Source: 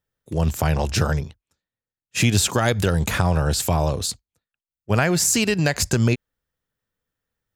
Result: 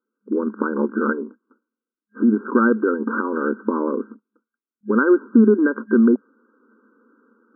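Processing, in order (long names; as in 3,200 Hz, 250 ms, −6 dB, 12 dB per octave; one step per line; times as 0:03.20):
Butterworth band-reject 700 Hz, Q 1.1
low-shelf EQ 380 Hz +9 dB
reversed playback
upward compression, threshold −33 dBFS
reversed playback
brickwall limiter −7 dBFS, peak gain reduction 6.5 dB
brick-wall band-pass 210–1,600 Hz
level +6.5 dB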